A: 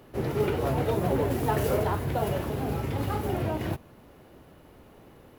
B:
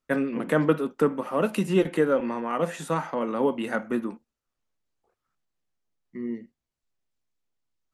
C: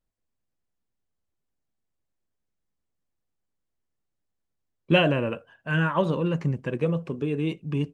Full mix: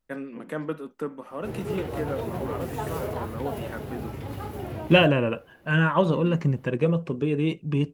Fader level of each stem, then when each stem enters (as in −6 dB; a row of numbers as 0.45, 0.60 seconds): −5.5, −9.5, +2.5 decibels; 1.30, 0.00, 0.00 seconds